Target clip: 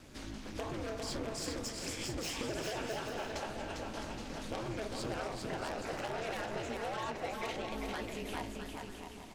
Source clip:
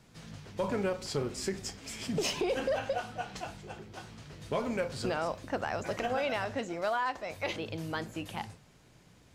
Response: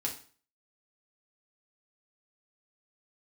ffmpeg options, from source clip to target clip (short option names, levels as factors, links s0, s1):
-filter_complex "[0:a]aeval=exprs='0.1*(cos(1*acos(clip(val(0)/0.1,-1,1)))-cos(1*PI/2))+0.0447*(cos(3*acos(clip(val(0)/0.1,-1,1)))-cos(3*PI/2))+0.0251*(cos(5*acos(clip(val(0)/0.1,-1,1)))-cos(5*PI/2))':c=same,flanger=delay=3.9:depth=9.6:regen=-62:speed=1.6:shape=triangular,aeval=exprs='val(0)*sin(2*PI*110*n/s)':c=same,acompressor=threshold=0.00224:ratio=3,asplit=2[s0][s1];[s1]aecho=0:1:400|660|829|938.8|1010:0.631|0.398|0.251|0.158|0.1[s2];[s0][s2]amix=inputs=2:normalize=0,volume=4.47"